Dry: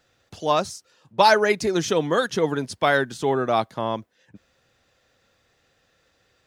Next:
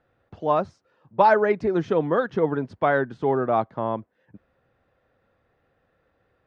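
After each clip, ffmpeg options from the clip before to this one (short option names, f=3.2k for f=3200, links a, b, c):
-af "lowpass=1.4k"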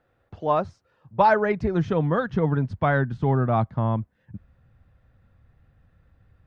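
-af "asubboost=boost=11.5:cutoff=130"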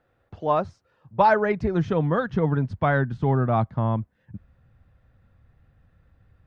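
-af anull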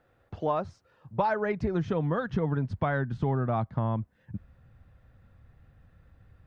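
-af "acompressor=threshold=-27dB:ratio=4,volume=1.5dB"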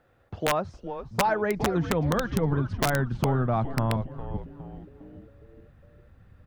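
-filter_complex "[0:a]asplit=6[a][b][c][d][e][f];[b]adelay=410,afreqshift=-140,volume=-10dB[g];[c]adelay=820,afreqshift=-280,volume=-16.6dB[h];[d]adelay=1230,afreqshift=-420,volume=-23.1dB[i];[e]adelay=1640,afreqshift=-560,volume=-29.7dB[j];[f]adelay=2050,afreqshift=-700,volume=-36.2dB[k];[a][g][h][i][j][k]amix=inputs=6:normalize=0,aeval=exprs='(mod(7.5*val(0)+1,2)-1)/7.5':c=same,volume=2.5dB"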